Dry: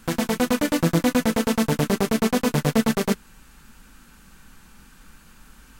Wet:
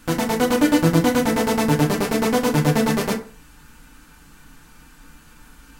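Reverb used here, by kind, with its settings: FDN reverb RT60 0.42 s, low-frequency decay 0.9×, high-frequency decay 0.55×, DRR 0.5 dB

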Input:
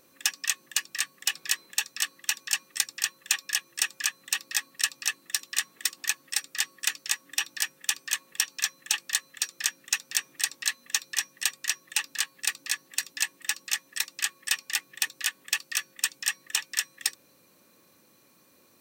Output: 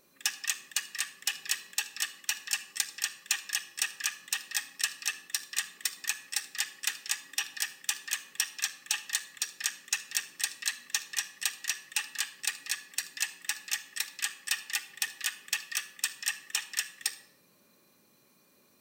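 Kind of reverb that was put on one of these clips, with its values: shoebox room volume 3100 m³, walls furnished, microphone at 1.3 m; gain -4.5 dB

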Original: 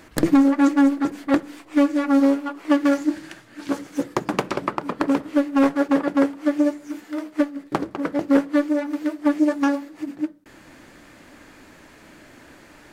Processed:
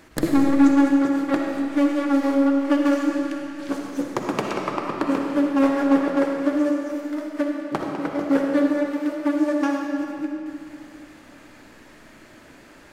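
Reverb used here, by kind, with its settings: digital reverb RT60 2.5 s, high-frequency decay 0.85×, pre-delay 20 ms, DRR 0.5 dB; gain -3 dB

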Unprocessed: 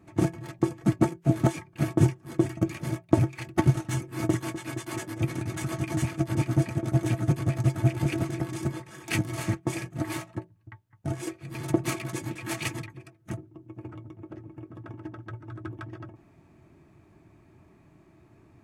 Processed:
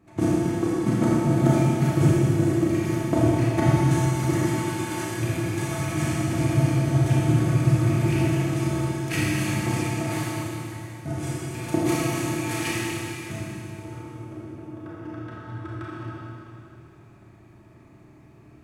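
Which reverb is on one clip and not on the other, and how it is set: Schroeder reverb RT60 2.9 s, combs from 26 ms, DRR -7.5 dB; gain -2.5 dB

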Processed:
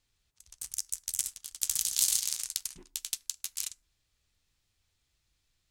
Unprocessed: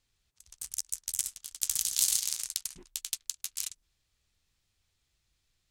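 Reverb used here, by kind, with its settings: FDN reverb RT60 0.53 s, low-frequency decay 0.9×, high-frequency decay 0.5×, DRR 17 dB

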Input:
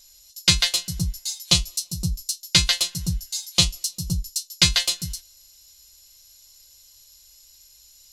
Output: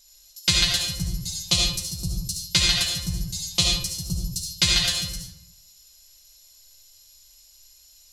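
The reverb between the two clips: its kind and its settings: digital reverb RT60 0.8 s, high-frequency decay 0.65×, pre-delay 30 ms, DRR -1.5 dB; gain -4 dB

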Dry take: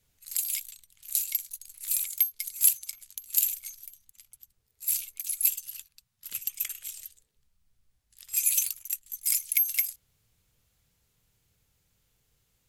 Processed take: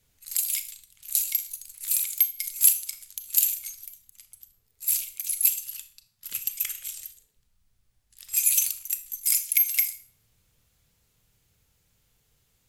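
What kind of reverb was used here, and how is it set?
Schroeder reverb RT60 0.43 s, combs from 26 ms, DRR 10.5 dB; gain +3 dB

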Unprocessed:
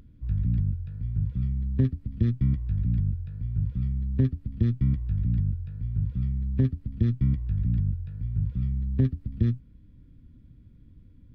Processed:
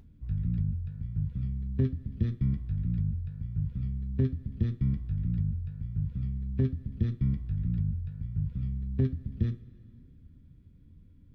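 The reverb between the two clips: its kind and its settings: two-slope reverb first 0.22 s, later 2.6 s, from -21 dB, DRR 7 dB; gain -4 dB

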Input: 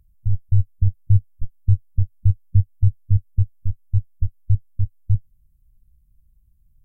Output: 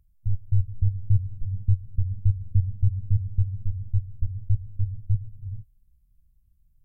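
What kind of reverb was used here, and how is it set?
non-linear reverb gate 0.49 s rising, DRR 10 dB; gain -5 dB

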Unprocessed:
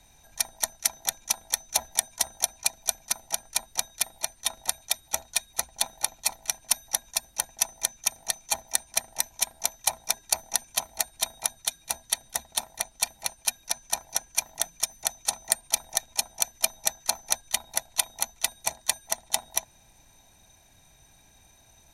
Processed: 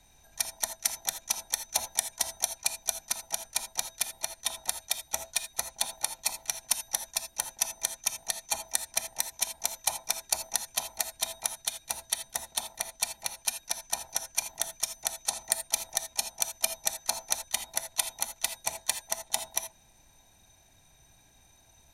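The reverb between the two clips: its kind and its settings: non-linear reverb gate 0.1 s rising, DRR 8.5 dB; gain -3.5 dB

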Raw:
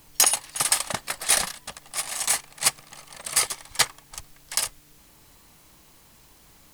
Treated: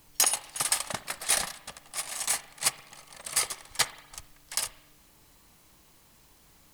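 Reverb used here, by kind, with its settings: spring tank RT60 1 s, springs 37/58 ms, chirp 40 ms, DRR 14.5 dB; gain -5 dB

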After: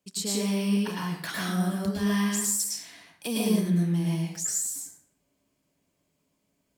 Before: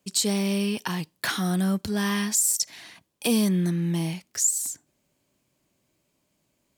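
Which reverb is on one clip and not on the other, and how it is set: plate-style reverb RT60 0.67 s, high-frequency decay 0.65×, pre-delay 95 ms, DRR -4.5 dB; gain -8.5 dB

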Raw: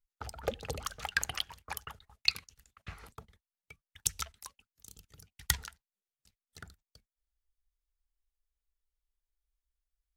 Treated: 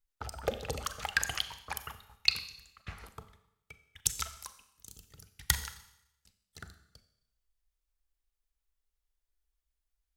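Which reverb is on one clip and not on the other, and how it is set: Schroeder reverb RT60 0.82 s, combs from 29 ms, DRR 10.5 dB; gain +1.5 dB

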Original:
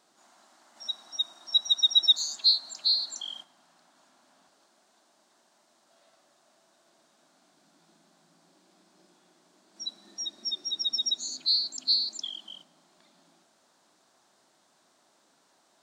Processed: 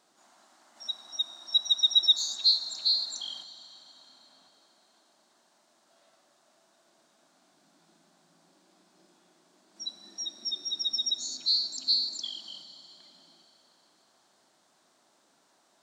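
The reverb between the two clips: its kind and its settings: Schroeder reverb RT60 3.5 s, combs from 27 ms, DRR 13 dB; gain -1 dB

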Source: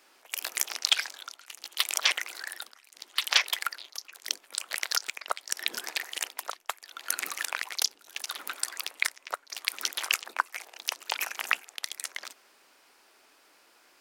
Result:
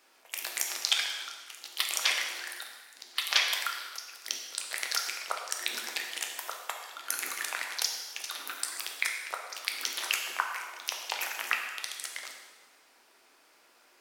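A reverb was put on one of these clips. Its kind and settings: plate-style reverb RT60 1.4 s, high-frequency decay 0.9×, DRR 1 dB; gain -3.5 dB

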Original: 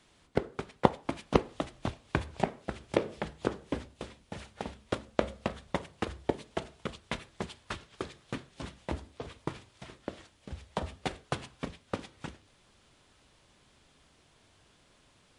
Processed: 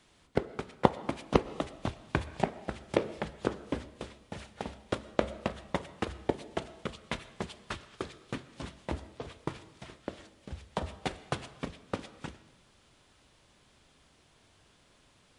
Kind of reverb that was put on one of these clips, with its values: digital reverb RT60 0.99 s, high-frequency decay 0.75×, pre-delay 80 ms, DRR 17 dB

